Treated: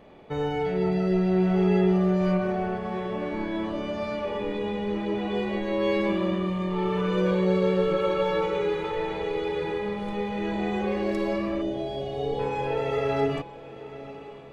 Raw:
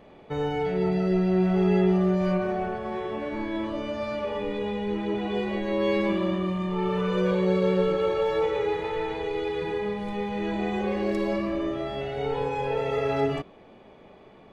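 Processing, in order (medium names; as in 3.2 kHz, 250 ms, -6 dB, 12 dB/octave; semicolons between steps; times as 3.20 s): 7.91–8.91 s: comb 5.4 ms, depth 55%; 11.61–12.39 s: time-frequency box 850–2800 Hz -26 dB; echo that smears into a reverb 982 ms, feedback 43%, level -15.5 dB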